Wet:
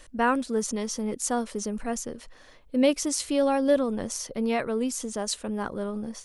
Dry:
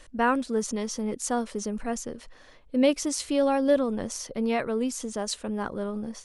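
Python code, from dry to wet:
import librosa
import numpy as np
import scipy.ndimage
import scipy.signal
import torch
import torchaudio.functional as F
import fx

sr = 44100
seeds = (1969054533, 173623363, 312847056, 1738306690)

y = fx.high_shelf(x, sr, hz=9400.0, db=7.0)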